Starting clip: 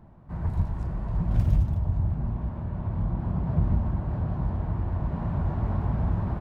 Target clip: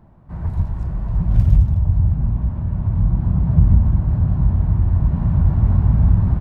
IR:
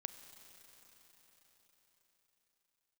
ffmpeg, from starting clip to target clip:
-af "asubboost=boost=3.5:cutoff=230,volume=2dB"

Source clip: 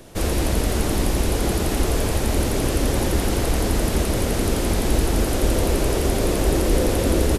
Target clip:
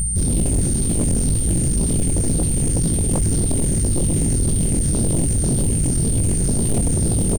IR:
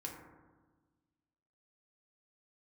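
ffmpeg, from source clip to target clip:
-filter_complex "[0:a]afftfilt=real='re*pow(10,7/40*sin(2*PI*(0.51*log(max(b,1)*sr/1024/100)/log(2)-(-1.9)*(pts-256)/sr)))':imag='im*pow(10,7/40*sin(2*PI*(0.51*log(max(b,1)*sr/1024/100)/log(2)-(-1.9)*(pts-256)/sr)))':win_size=1024:overlap=0.75,acrossover=split=170[link_01][link_02];[link_01]acompressor=mode=upward:threshold=-38dB:ratio=2.5[link_03];[link_02]bandpass=frequency=6900:width_type=q:width=0.71:csg=0[link_04];[link_03][link_04]amix=inputs=2:normalize=0,aeval=exprs='clip(val(0),-1,0.075)':channel_layout=same,aeval=exprs='val(0)+0.0141*(sin(2*PI*60*n/s)+sin(2*PI*2*60*n/s)/2+sin(2*PI*3*60*n/s)/3+sin(2*PI*4*60*n/s)/4+sin(2*PI*5*60*n/s)/5)':channel_layout=same,afwtdn=0.0355,aecho=1:1:281:0.355,aeval=exprs='0.335*(cos(1*acos(clip(val(0)/0.335,-1,1)))-cos(1*PI/2))+0.106*(cos(2*acos(clip(val(0)/0.335,-1,1)))-cos(2*PI/2))+0.00335*(cos(3*acos(clip(val(0)/0.335,-1,1)))-cos(3*PI/2))+0.15*(cos(7*acos(clip(val(0)/0.335,-1,1)))-cos(7*PI/2))':channel_layout=same,acontrast=32,flanger=delay=18:depth=5:speed=2.1,aeval=exprs='val(0)+0.0447*sin(2*PI*8900*n/s)':channel_layout=same,aeval=exprs='0.501*sin(PI/2*3.16*val(0)/0.501)':channel_layout=same,volume=-8dB"

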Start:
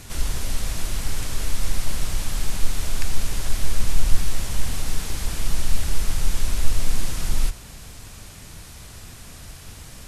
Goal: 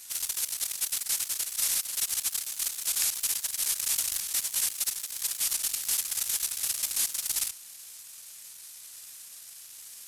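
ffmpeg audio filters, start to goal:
ffmpeg -i in.wav -af "aeval=exprs='0.841*(cos(1*acos(clip(val(0)/0.841,-1,1)))-cos(1*PI/2))+0.335*(cos(6*acos(clip(val(0)/0.841,-1,1)))-cos(6*PI/2))':channel_layout=same,aderivative" out.wav

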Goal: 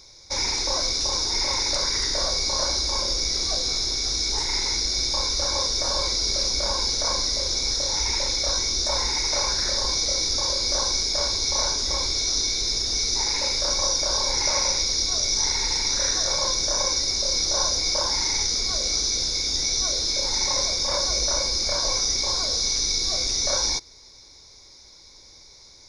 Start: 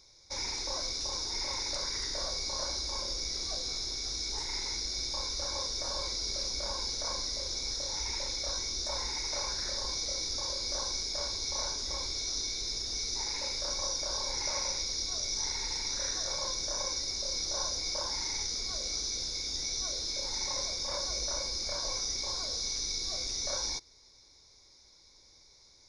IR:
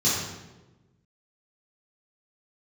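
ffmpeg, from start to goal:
-af "acontrast=56,volume=4.5dB"

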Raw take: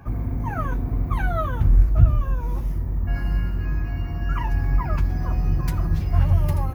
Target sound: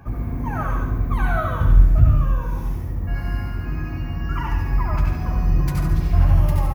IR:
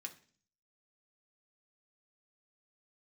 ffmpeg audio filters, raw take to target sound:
-filter_complex "[0:a]aecho=1:1:71|142|213|284|355|426|497:0.501|0.286|0.163|0.0928|0.0529|0.0302|0.0172,asplit=2[link_01][link_02];[1:a]atrim=start_sample=2205,adelay=91[link_03];[link_02][link_03]afir=irnorm=-1:irlink=0,volume=1.5dB[link_04];[link_01][link_04]amix=inputs=2:normalize=0"

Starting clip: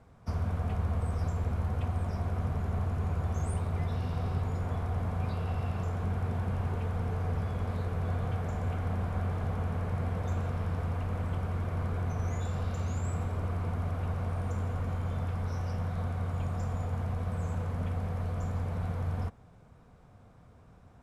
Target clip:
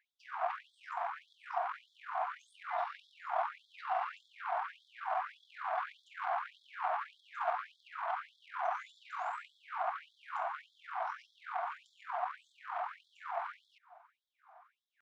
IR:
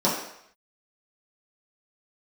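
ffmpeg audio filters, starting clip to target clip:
-af "atempo=1.4,adynamicsmooth=sensitivity=1.5:basefreq=840,afftfilt=real='re*gte(b*sr/1024,630*pow(3300/630,0.5+0.5*sin(2*PI*1.7*pts/sr)))':imag='im*gte(b*sr/1024,630*pow(3300/630,0.5+0.5*sin(2*PI*1.7*pts/sr)))':win_size=1024:overlap=0.75,volume=16.5dB"

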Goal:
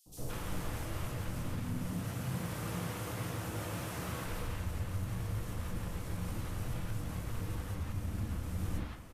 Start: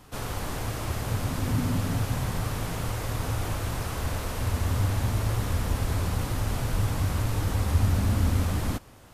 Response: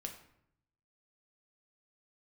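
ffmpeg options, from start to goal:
-filter_complex "[0:a]asettb=1/sr,asplit=3[link_01][link_02][link_03];[link_01]atrim=end=1.794[link_04];[link_02]atrim=start=1.79:end=4.2,asetpts=PTS-STARTPTS,afade=type=in:duration=0.004:curve=qsin,afade=type=out:start_time=2.406:duration=0.004:curve=qsin,highpass=110[link_05];[link_03]atrim=start=4.196[link_06];[link_04][link_05]acrossfade=duration=0.004:curve1=hsin:curve2=qsin[link_07];[link_07][link_06]acrossfade=duration=0.004:curve1=qsin:curve2=hsin,acompressor=threshold=-31dB:ratio=6,asoftclip=type=tanh:threshold=-25dB,acrossover=split=700|4600[link_08][link_09][link_10];[link_08]adelay=60[link_11];[link_09]adelay=170[link_12];[link_11][link_12][link_10]amix=inputs=3:normalize=0[link_13];[1:a]atrim=start_sample=2205[link_14];[link_13][link_14]afir=irnorm=-1:irlink=0"

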